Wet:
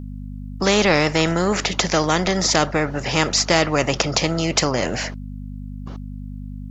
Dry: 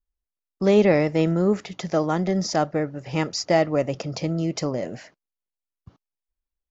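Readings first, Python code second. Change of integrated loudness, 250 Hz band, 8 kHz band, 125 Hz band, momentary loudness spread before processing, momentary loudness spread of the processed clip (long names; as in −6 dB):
+4.0 dB, +1.0 dB, can't be measured, +2.5 dB, 10 LU, 18 LU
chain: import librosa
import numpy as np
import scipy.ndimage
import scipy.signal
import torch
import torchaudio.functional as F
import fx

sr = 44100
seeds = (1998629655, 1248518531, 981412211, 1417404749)

y = fx.add_hum(x, sr, base_hz=50, snr_db=19)
y = fx.spectral_comp(y, sr, ratio=2.0)
y = F.gain(torch.from_numpy(y), 5.0).numpy()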